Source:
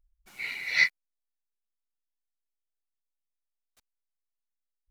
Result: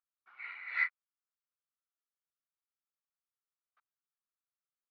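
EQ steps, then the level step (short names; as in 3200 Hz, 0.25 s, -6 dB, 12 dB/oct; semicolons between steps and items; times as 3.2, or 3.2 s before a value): ladder band-pass 1400 Hz, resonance 65%; air absorption 160 m; tilt -3 dB/oct; +7.5 dB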